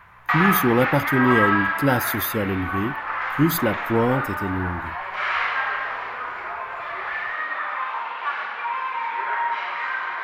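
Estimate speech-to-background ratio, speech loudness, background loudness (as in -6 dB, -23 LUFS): 2.0 dB, -23.0 LUFS, -25.0 LUFS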